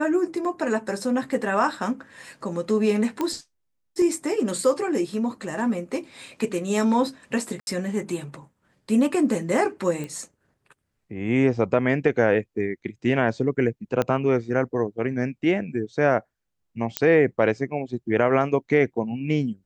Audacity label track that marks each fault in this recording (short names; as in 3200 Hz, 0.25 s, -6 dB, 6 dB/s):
3.210000	3.210000	pop -13 dBFS
7.600000	7.670000	gap 71 ms
10.040000	10.040000	pop -21 dBFS
14.020000	14.020000	pop -10 dBFS
16.970000	16.970000	pop -5 dBFS